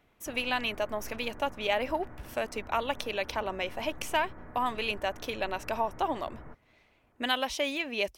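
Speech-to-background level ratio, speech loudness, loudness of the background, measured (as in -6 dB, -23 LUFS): 17.5 dB, -32.0 LUFS, -49.5 LUFS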